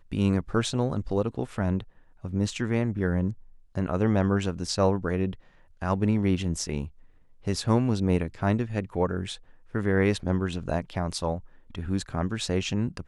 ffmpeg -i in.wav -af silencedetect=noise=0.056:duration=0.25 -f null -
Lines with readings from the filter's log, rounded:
silence_start: 1.80
silence_end: 2.25 | silence_duration: 0.45
silence_start: 3.30
silence_end: 3.77 | silence_duration: 0.46
silence_start: 5.30
silence_end: 5.82 | silence_duration: 0.52
silence_start: 6.85
silence_end: 7.47 | silence_duration: 0.63
silence_start: 9.32
silence_end: 9.75 | silence_duration: 0.43
silence_start: 11.36
silence_end: 11.78 | silence_duration: 0.43